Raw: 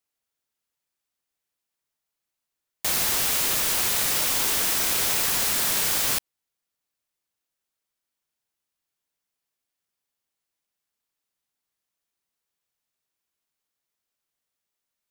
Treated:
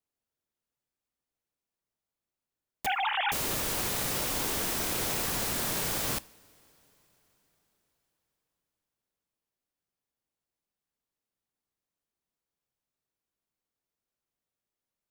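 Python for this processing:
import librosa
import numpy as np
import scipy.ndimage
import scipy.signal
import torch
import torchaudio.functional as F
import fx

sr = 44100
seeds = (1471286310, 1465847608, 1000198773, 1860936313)

y = fx.sine_speech(x, sr, at=(2.86, 3.32))
y = fx.tilt_shelf(y, sr, db=5.5, hz=900.0)
y = fx.rev_double_slope(y, sr, seeds[0], early_s=0.43, late_s=4.7, knee_db=-18, drr_db=17.5)
y = y * 10.0 ** (-3.5 / 20.0)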